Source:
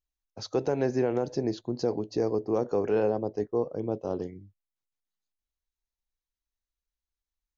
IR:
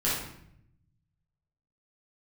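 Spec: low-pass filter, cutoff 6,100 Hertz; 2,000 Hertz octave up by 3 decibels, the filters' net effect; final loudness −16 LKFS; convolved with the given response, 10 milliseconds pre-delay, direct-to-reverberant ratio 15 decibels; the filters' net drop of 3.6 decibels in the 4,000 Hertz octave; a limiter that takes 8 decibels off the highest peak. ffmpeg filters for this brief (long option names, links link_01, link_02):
-filter_complex "[0:a]lowpass=6100,equalizer=frequency=2000:width_type=o:gain=5,equalizer=frequency=4000:width_type=o:gain=-4,alimiter=limit=-23dB:level=0:latency=1,asplit=2[link_01][link_02];[1:a]atrim=start_sample=2205,adelay=10[link_03];[link_02][link_03]afir=irnorm=-1:irlink=0,volume=-25.5dB[link_04];[link_01][link_04]amix=inputs=2:normalize=0,volume=18dB"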